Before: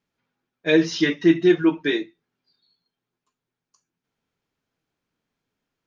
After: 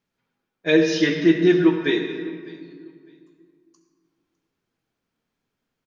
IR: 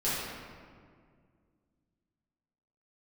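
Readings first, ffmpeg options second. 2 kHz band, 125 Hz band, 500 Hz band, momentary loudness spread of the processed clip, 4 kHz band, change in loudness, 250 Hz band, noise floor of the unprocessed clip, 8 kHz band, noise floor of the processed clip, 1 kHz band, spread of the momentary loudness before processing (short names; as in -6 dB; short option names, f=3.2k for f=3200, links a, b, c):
+1.0 dB, +2.5 dB, +1.5 dB, 15 LU, +0.5 dB, +0.5 dB, +1.0 dB, under -85 dBFS, n/a, -81 dBFS, +1.0 dB, 11 LU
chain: -filter_complex "[0:a]aecho=1:1:605|1210:0.0708|0.0149,asplit=2[a][b];[1:a]atrim=start_sample=2205,adelay=65[c];[b][c]afir=irnorm=-1:irlink=0,volume=-15.5dB[d];[a][d]amix=inputs=2:normalize=0"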